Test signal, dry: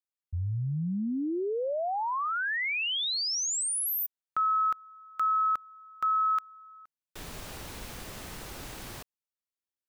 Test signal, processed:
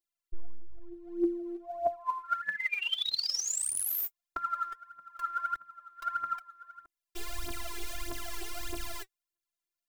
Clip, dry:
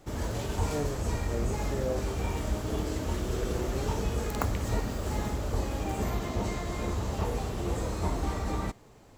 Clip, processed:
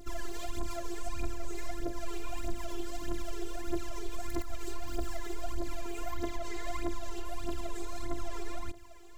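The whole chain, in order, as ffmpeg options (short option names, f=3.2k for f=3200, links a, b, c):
-af "acompressor=threshold=-32dB:ratio=6:attack=0.19:release=231:knee=1:detection=peak,afftfilt=real='hypot(re,im)*cos(PI*b)':imag='0':win_size=512:overlap=0.75,aphaser=in_gain=1:out_gain=1:delay=2.7:decay=0.75:speed=1.6:type=triangular,volume=2dB"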